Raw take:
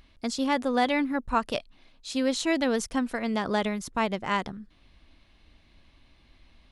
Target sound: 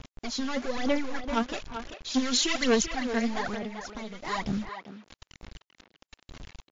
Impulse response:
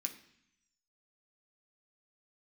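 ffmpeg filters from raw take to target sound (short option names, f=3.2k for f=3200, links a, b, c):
-filter_complex "[0:a]asettb=1/sr,asplit=3[a][b][c];[a]atrim=end=0.784[d];[b]atrim=start=0.78:end=1.23,asetpts=PTS-STARTPTS,afade=t=in:d=0.004:c=qsin,afade=t=out:st=0.446:d=0.004:c=qsin,aeval=exprs='if(lt(val(0),0),0.251*val(0),val(0))':c=same[e];[c]atrim=start=1.226[f];[d][e]acrossfade=d=0.004:c1=hsin:c2=qsin[g];[g][f]acrossfade=d=0.004:c1=qsin:c2=hsin,adynamicequalizer=threshold=0.00794:dfrequency=1600:dqfactor=1.9:tfrequency=1600:tqfactor=1.9:attack=5:release=100:ratio=0.375:range=2:mode=boostabove:tftype=bell,volume=29.5dB,asoftclip=hard,volume=-29.5dB,aphaser=in_gain=1:out_gain=1:delay=4.4:decay=0.77:speed=1.1:type=sinusoidal,acrusher=bits=6:mix=0:aa=0.000001,asettb=1/sr,asplit=3[h][i][j];[h]atrim=end=2.144[k];[i]atrim=start=2.14:end=2.83,asetpts=PTS-STARTPTS,afade=t=in:d=0.004:c=qsin,afade=t=out:st=0.686:d=0.004:c=qsin,highshelf=f=2.3k:g=9.5[l];[j]atrim=start=2.826[m];[k][l]acrossfade=d=0.004:c1=hsin:c2=qsin[n];[n][m]acrossfade=d=0.004:c1=qsin:c2=hsin,asettb=1/sr,asplit=3[o][p][q];[o]atrim=end=3.544[r];[p]atrim=start=3.54:end=4.25,asetpts=PTS-STARTPTS,afade=t=in:d=0.004:c=qsin,afade=t=out:st=0.706:d=0.004:c=qsin,acompressor=threshold=-36dB:ratio=4[s];[q]atrim=start=4.246[t];[r][s]acrossfade=d=0.004:c1=hsin:c2=qsin[u];[u][t]acrossfade=d=0.004:c1=qsin:c2=hsin,asplit=2[v][w];[w]adelay=390,highpass=300,lowpass=3.4k,asoftclip=type=hard:threshold=-18.5dB,volume=-8dB[x];[v][x]amix=inputs=2:normalize=0,volume=-1.5dB" -ar 16000 -c:a wmav2 -b:a 128k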